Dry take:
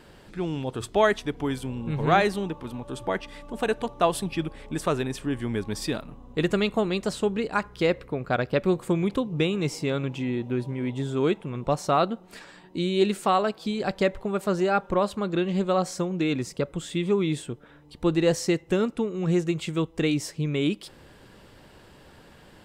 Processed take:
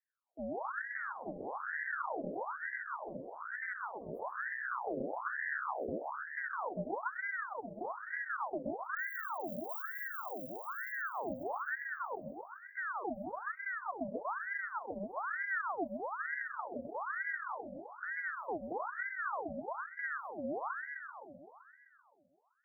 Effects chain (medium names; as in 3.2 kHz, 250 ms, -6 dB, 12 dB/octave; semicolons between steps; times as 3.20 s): 8.96–10.96 s: zero-crossing glitches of -18 dBFS; spectral noise reduction 21 dB; gate with hold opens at -41 dBFS; inverse Chebyshev band-stop 980–7800 Hz, stop band 80 dB; compression, threshold -38 dBFS, peak gain reduction 14 dB; peak limiter -35 dBFS, peak gain reduction 6.5 dB; multi-head delay 129 ms, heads first and second, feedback 62%, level -9 dB; ring modulator with a swept carrier 1.1 kHz, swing 65%, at 1.1 Hz; trim +3.5 dB